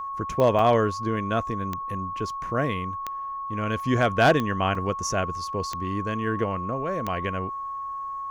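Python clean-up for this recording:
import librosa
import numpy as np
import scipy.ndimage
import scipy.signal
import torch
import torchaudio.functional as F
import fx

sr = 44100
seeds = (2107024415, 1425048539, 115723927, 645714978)

y = fx.fix_declip(x, sr, threshold_db=-11.0)
y = fx.fix_declick_ar(y, sr, threshold=10.0)
y = fx.notch(y, sr, hz=1100.0, q=30.0)
y = fx.fix_interpolate(y, sr, at_s=(0.59, 4.75), length_ms=3.6)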